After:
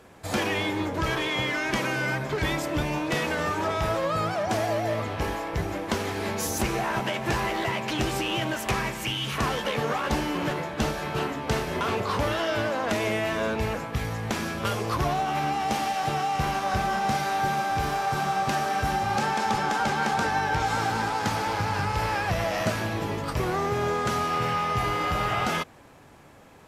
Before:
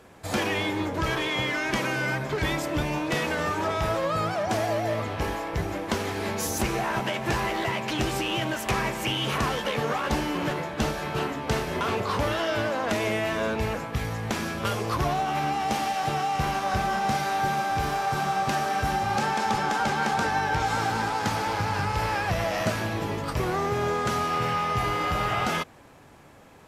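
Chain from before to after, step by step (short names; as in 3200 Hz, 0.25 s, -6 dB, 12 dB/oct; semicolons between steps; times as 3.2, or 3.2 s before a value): 8.7–9.37 bell 560 Hz -1 dB -> -11.5 dB 2.3 oct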